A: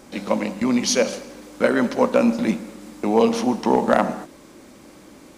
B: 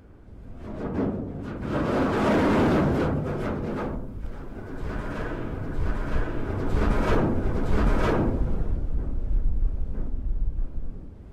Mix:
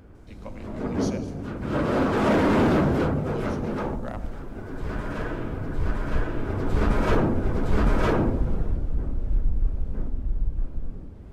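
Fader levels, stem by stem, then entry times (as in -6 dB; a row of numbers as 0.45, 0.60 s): -19.5, +1.0 dB; 0.15, 0.00 s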